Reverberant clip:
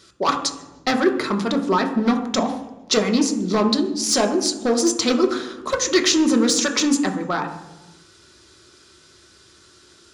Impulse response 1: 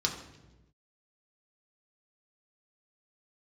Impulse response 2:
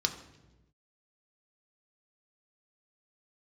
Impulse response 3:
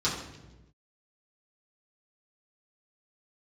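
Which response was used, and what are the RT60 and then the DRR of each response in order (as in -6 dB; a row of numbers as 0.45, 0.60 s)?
2; 1.1, 1.1, 1.1 s; -1.5, 3.0, -10.0 dB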